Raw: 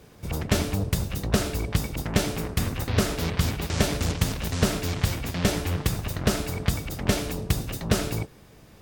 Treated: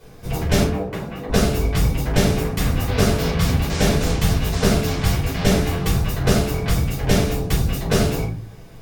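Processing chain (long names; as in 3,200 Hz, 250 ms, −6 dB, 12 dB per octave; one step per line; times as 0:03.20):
0:00.63–0:01.29: three-way crossover with the lows and the highs turned down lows −21 dB, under 190 Hz, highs −17 dB, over 2,500 Hz
rectangular room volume 220 cubic metres, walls furnished, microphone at 4.9 metres
level −3.5 dB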